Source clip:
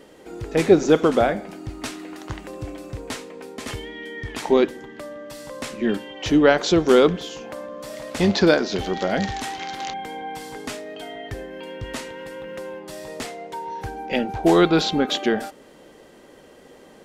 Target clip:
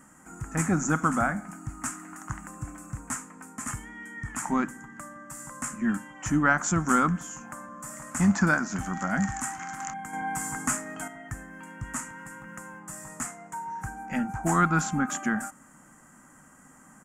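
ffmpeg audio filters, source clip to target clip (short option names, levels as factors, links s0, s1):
-filter_complex "[0:a]firequalizer=gain_entry='entry(100,0);entry(140,6);entry(260,2);entry(410,-20);entry(750,-2);entry(1300,9);entry(2200,-4);entry(3800,-22);entry(7100,14);entry(12000,4)':delay=0.05:min_phase=1,asettb=1/sr,asplit=3[s0][s1][s2];[s0]atrim=end=10.134[s3];[s1]atrim=start=10.13:end=11.08,asetpts=PTS-STARTPTS,afade=t=in:d=0.004:c=qsin,afade=t=out:st=0.946:d=0.004:c=qsin,acontrast=74[s4];[s2]atrim=start=11.076[s5];[s3][s4]acrossfade=d=0.004:c1=hsin:c2=qsin[s6];[s6][s5]acrossfade=d=0.004:c1=qsin:c2=hsin,volume=0.562"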